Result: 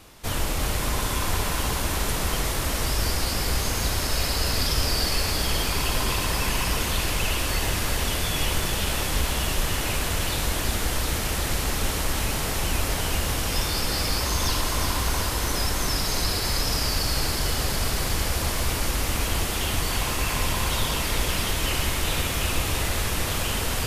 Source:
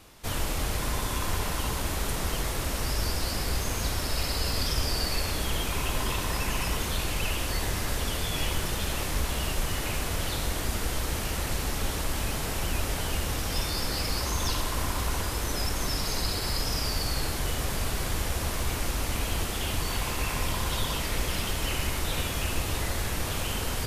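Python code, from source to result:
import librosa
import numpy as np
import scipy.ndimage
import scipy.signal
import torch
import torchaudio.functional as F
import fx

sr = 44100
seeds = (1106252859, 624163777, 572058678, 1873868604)

y = fx.echo_thinned(x, sr, ms=367, feedback_pct=75, hz=800.0, wet_db=-6.0)
y = y * 10.0 ** (3.5 / 20.0)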